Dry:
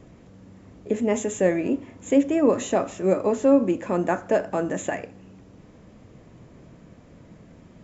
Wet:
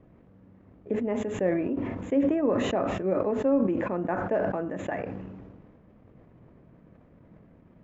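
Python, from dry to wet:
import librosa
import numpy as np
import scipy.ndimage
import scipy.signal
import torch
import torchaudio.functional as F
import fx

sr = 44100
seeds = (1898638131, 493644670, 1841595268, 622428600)

y = scipy.signal.sosfilt(scipy.signal.butter(2, 1900.0, 'lowpass', fs=sr, output='sos'), x)
y = fx.transient(y, sr, attack_db=2, sustain_db=-7)
y = fx.sustainer(y, sr, db_per_s=30.0)
y = y * 10.0 ** (-7.5 / 20.0)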